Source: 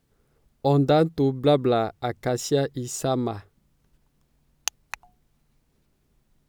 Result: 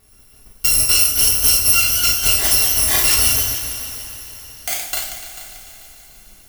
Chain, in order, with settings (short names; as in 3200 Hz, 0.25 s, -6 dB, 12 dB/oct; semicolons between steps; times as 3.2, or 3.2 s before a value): FFT order left unsorted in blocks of 256 samples; compressor 10:1, threshold -29 dBFS, peak gain reduction 15 dB; echoes that change speed 0.315 s, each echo +1 st, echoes 2, each echo -6 dB; multi-head echo 0.147 s, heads all three, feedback 47%, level -19 dB; two-slope reverb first 0.47 s, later 4.6 s, from -18 dB, DRR -3.5 dB; maximiser +13.5 dB; gain -1 dB